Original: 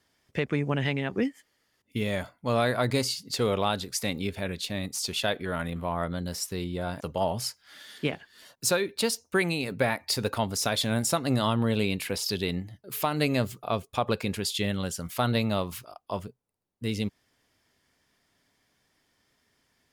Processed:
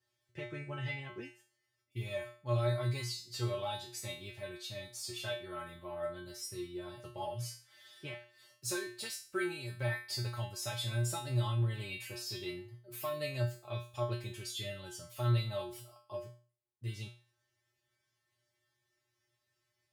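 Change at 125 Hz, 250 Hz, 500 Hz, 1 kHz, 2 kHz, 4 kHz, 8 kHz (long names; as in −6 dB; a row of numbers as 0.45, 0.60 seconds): −4.0, −16.0, −10.5, −12.5, −10.5, −10.5, −11.0 decibels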